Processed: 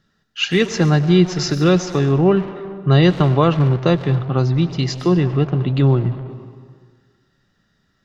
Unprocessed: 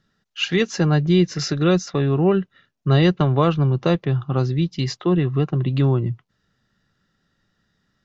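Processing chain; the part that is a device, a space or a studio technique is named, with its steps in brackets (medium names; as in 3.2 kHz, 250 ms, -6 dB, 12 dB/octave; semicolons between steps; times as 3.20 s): saturated reverb return (on a send at -6 dB: reverberation RT60 1.6 s, pre-delay 89 ms + saturation -23.5 dBFS, distortion -7 dB); on the sum: trim +3 dB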